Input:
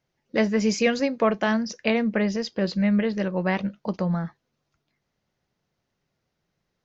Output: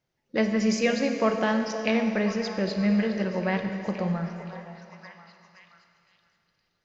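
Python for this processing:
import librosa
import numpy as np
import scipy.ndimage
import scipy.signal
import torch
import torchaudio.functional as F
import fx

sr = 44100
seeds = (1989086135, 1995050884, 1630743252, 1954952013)

p1 = x + fx.echo_stepped(x, sr, ms=520, hz=620.0, octaves=0.7, feedback_pct=70, wet_db=-9.0, dry=0)
p2 = fx.rev_schroeder(p1, sr, rt60_s=2.6, comb_ms=28, drr_db=5.5)
y = p2 * librosa.db_to_amplitude(-3.0)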